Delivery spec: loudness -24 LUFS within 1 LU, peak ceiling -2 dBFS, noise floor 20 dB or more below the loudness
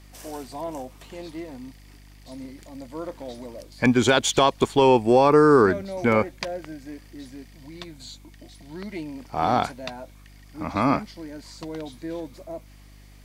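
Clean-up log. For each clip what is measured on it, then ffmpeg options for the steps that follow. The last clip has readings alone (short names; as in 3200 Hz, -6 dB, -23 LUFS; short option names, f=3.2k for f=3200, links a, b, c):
hum 50 Hz; harmonics up to 300 Hz; hum level -43 dBFS; loudness -21.0 LUFS; peak -4.5 dBFS; loudness target -24.0 LUFS
-> -af "bandreject=f=50:t=h:w=4,bandreject=f=100:t=h:w=4,bandreject=f=150:t=h:w=4,bandreject=f=200:t=h:w=4,bandreject=f=250:t=h:w=4,bandreject=f=300:t=h:w=4"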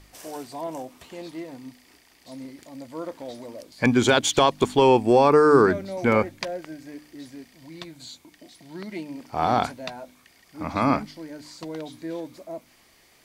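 hum none; loudness -21.0 LUFS; peak -4.5 dBFS; loudness target -24.0 LUFS
-> -af "volume=-3dB"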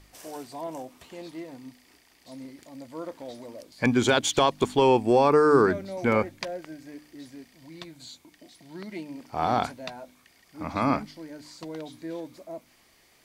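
loudness -24.0 LUFS; peak -7.5 dBFS; noise floor -61 dBFS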